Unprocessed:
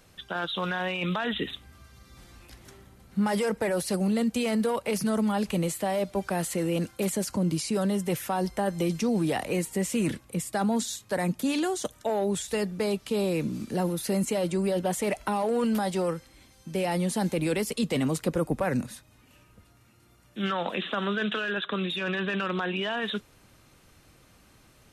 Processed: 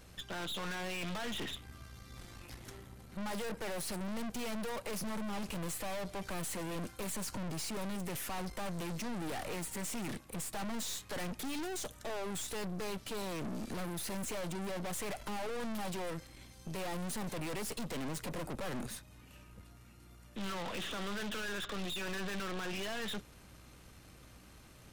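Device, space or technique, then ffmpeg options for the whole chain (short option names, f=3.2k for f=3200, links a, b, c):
valve amplifier with mains hum: -filter_complex "[0:a]asettb=1/sr,asplit=3[a][b][c];[a]atrim=end=10.604[d];[b]atrim=start=10.6:end=11.45,asetpts=PTS-STARTPTS,afade=t=in:d=0.004:c=qsin,afade=t=out:st=0.846:d=0.004:c=qsin,equalizer=f=1.9k:w=0.52:g=5[e];[c]atrim=start=11.446[f];[d][e]acrossfade=d=0.004:c1=hsin:c2=qsin[g];[g][f]acrossfade=d=0.004:c1=qsin:c2=hsin,aeval=exprs='(tanh(126*val(0)+0.7)-tanh(0.7))/126':c=same,aeval=exprs='val(0)+0.000708*(sin(2*PI*60*n/s)+sin(2*PI*2*60*n/s)/2+sin(2*PI*3*60*n/s)/3+sin(2*PI*4*60*n/s)/4+sin(2*PI*5*60*n/s)/5)':c=same,volume=3.5dB"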